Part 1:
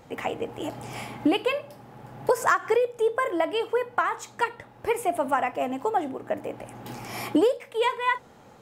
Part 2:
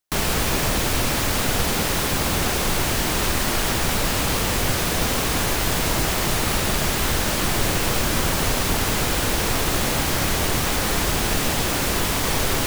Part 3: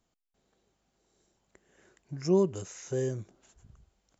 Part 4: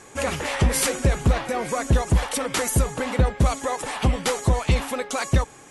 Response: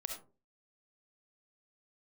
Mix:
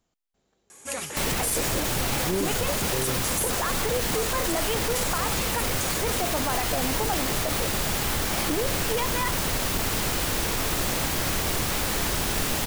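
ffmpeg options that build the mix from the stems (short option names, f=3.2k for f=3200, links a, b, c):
-filter_complex "[0:a]acompressor=threshold=-23dB:ratio=6,adelay=1150,volume=1dB[a];[1:a]acrusher=bits=3:mix=0:aa=0.000001,adelay=1050,volume=-5dB[b];[2:a]volume=1.5dB[c];[3:a]highpass=120,aemphasis=mode=production:type=75fm,adelay=700,volume=-9dB[d];[a][b][c][d]amix=inputs=4:normalize=0,alimiter=limit=-16.5dB:level=0:latency=1:release=15"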